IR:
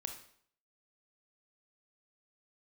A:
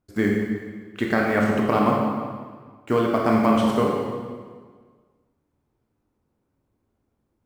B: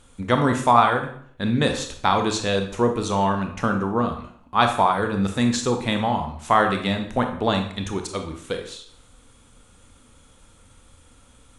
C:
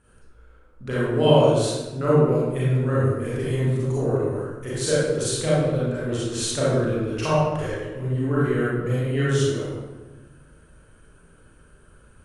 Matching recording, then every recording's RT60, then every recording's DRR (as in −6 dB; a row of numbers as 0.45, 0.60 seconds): B; 1.6, 0.60, 1.2 seconds; −2.0, 4.5, −9.5 decibels